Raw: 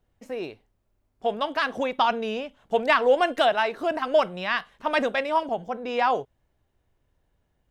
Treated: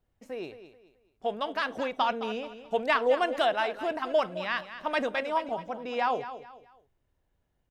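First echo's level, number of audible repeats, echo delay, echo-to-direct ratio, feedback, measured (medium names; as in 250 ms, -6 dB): -12.5 dB, 3, 215 ms, -12.0 dB, 32%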